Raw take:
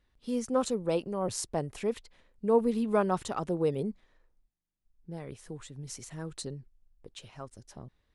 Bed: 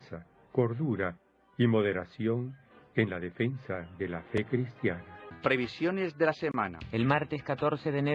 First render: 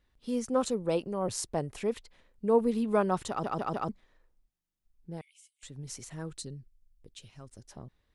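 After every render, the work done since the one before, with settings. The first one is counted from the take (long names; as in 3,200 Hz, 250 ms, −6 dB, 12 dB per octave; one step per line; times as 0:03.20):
0:03.29: stutter in place 0.15 s, 4 plays
0:05.21–0:05.63: Chebyshev high-pass with heavy ripple 2,100 Hz, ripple 9 dB
0:06.33–0:07.49: parametric band 880 Hz −12 dB 2.4 octaves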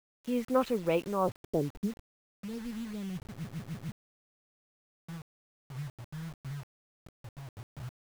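low-pass filter sweep 2,400 Hz → 120 Hz, 0:00.96–0:02.01
bit-depth reduction 8 bits, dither none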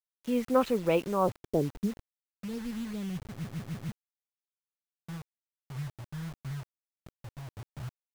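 level +2.5 dB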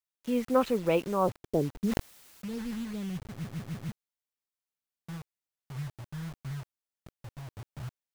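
0:01.84–0:02.83: level that may fall only so fast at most 32 dB per second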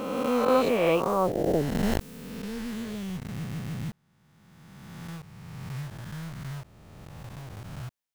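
peak hold with a rise ahead of every peak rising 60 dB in 2.12 s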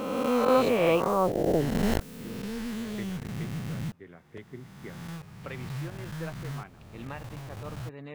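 mix in bed −14 dB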